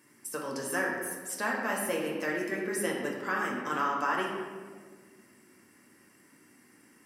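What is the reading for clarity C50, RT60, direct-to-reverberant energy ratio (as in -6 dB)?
2.0 dB, 1.7 s, -2.0 dB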